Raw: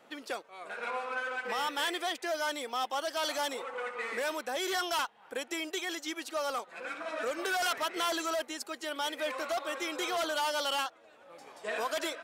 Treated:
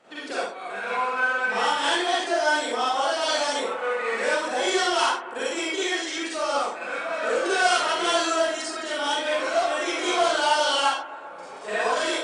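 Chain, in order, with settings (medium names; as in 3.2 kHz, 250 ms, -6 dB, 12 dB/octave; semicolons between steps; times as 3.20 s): brick-wall FIR low-pass 10 kHz; bucket-brigade echo 130 ms, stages 2048, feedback 75%, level -16 dB; reverberation, pre-delay 33 ms, DRR -9 dB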